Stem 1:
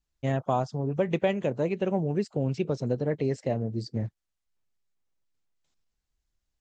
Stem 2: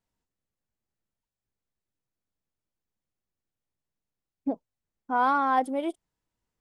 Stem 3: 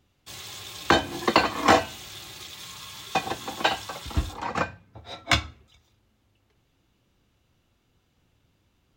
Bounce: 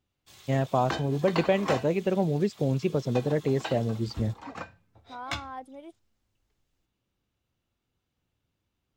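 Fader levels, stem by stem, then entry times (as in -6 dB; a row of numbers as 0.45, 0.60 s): +1.5, -16.0, -12.5 dB; 0.25, 0.00, 0.00 s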